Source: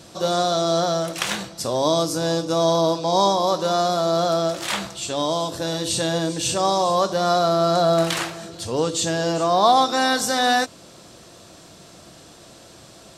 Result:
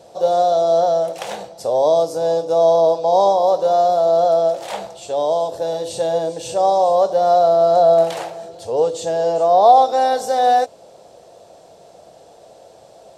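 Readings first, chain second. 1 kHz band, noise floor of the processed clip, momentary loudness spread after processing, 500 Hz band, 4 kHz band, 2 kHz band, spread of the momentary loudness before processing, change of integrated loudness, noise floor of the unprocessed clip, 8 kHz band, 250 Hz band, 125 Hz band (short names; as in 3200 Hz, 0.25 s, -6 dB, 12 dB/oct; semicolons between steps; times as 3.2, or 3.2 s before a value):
+5.5 dB, -46 dBFS, 12 LU, +7.0 dB, -8.5 dB, -8.5 dB, 8 LU, +4.5 dB, -46 dBFS, -8.5 dB, -7.5 dB, -8.5 dB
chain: band shelf 610 Hz +15.5 dB 1.3 oct; gain -8.5 dB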